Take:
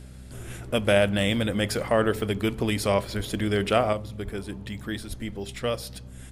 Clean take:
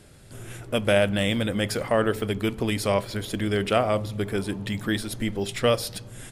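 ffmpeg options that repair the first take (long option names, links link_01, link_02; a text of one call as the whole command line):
ffmpeg -i in.wav -filter_complex "[0:a]bandreject=frequency=63.6:width_type=h:width=4,bandreject=frequency=127.2:width_type=h:width=4,bandreject=frequency=190.8:width_type=h:width=4,bandreject=frequency=254.4:width_type=h:width=4,asplit=3[link_01][link_02][link_03];[link_01]afade=type=out:start_time=3.16:duration=0.02[link_04];[link_02]highpass=frequency=140:width=0.5412,highpass=frequency=140:width=1.3066,afade=type=in:start_time=3.16:duration=0.02,afade=type=out:start_time=3.28:duration=0.02[link_05];[link_03]afade=type=in:start_time=3.28:duration=0.02[link_06];[link_04][link_05][link_06]amix=inputs=3:normalize=0,asplit=3[link_07][link_08][link_09];[link_07]afade=type=out:start_time=4.24:duration=0.02[link_10];[link_08]highpass=frequency=140:width=0.5412,highpass=frequency=140:width=1.3066,afade=type=in:start_time=4.24:duration=0.02,afade=type=out:start_time=4.36:duration=0.02[link_11];[link_09]afade=type=in:start_time=4.36:duration=0.02[link_12];[link_10][link_11][link_12]amix=inputs=3:normalize=0,asplit=3[link_13][link_14][link_15];[link_13]afade=type=out:start_time=5.08:duration=0.02[link_16];[link_14]highpass=frequency=140:width=0.5412,highpass=frequency=140:width=1.3066,afade=type=in:start_time=5.08:duration=0.02,afade=type=out:start_time=5.2:duration=0.02[link_17];[link_15]afade=type=in:start_time=5.2:duration=0.02[link_18];[link_16][link_17][link_18]amix=inputs=3:normalize=0,asetnsamples=nb_out_samples=441:pad=0,asendcmd='3.93 volume volume 6.5dB',volume=0dB" out.wav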